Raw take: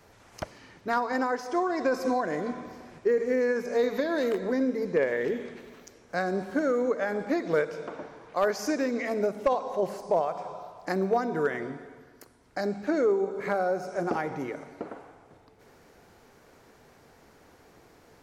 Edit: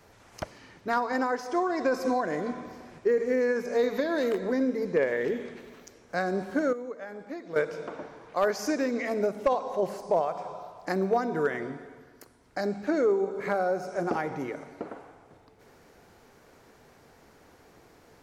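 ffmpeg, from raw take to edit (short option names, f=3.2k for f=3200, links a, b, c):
-filter_complex "[0:a]asplit=3[a][b][c];[a]atrim=end=6.732[d];[b]atrim=start=6.728:end=7.562,asetpts=PTS-STARTPTS,volume=-11dB[e];[c]atrim=start=7.558[f];[d][e]acrossfade=d=0.004:c1=hsin:c2=hsin[g];[g][f]acrossfade=d=0.004:c1=hsin:c2=hsin"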